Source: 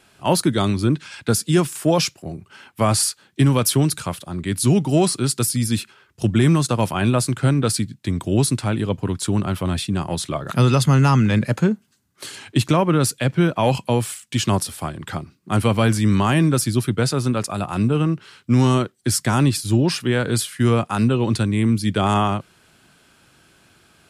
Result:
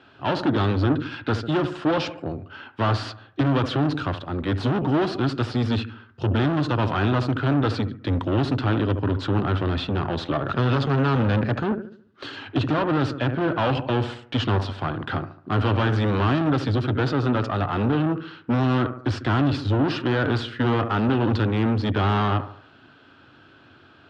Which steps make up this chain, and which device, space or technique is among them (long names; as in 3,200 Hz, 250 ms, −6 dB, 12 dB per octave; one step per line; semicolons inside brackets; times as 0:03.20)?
analogue delay pedal into a guitar amplifier (bucket-brigade delay 72 ms, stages 1,024, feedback 43%, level −14.5 dB; tube saturation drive 25 dB, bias 0.6; loudspeaker in its box 83–3,600 Hz, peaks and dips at 97 Hz +6 dB, 180 Hz −9 dB, 280 Hz +7 dB, 1,400 Hz +4 dB, 2,200 Hz −8 dB)
level +6 dB